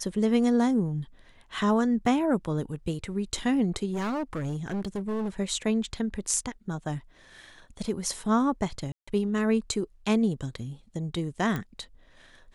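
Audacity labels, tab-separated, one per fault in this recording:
2.060000	2.060000	drop-out 3 ms
3.940000	5.290000	clipping −27 dBFS
8.920000	9.070000	drop-out 155 ms
11.560000	11.560000	click −18 dBFS

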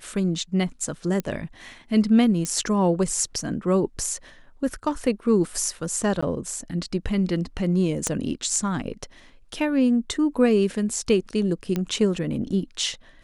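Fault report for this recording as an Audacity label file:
1.200000	1.200000	click −14 dBFS
2.450000	2.450000	click −14 dBFS
6.210000	6.220000	drop-out 15 ms
8.070000	8.070000	click −10 dBFS
11.760000	11.760000	click −13 dBFS

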